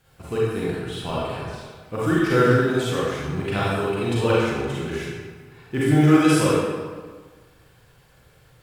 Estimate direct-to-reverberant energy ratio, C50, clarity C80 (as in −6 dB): −7.5 dB, −4.5 dB, −0.5 dB